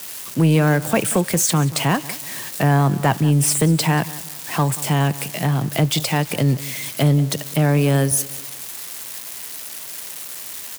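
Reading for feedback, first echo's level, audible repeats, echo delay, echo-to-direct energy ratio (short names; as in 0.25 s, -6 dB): 39%, -18.0 dB, 3, 0.184 s, -17.5 dB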